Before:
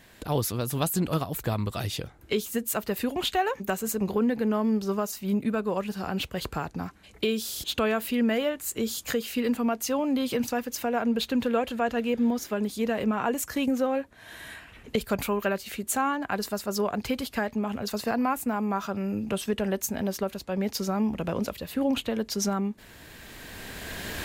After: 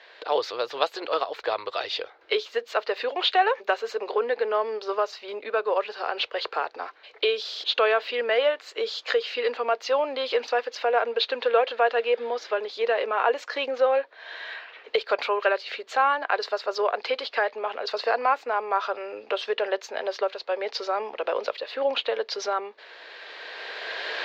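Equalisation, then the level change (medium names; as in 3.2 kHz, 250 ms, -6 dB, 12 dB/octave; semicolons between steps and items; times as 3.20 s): elliptic band-pass 460–4400 Hz, stop band 40 dB; +6.5 dB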